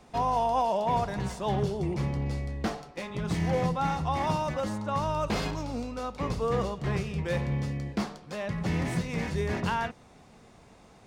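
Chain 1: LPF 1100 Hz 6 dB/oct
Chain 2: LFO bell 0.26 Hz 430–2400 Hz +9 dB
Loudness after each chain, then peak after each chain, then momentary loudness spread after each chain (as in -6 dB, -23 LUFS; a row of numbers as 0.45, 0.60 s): -31.5, -27.5 LUFS; -17.5, -10.5 dBFS; 7, 10 LU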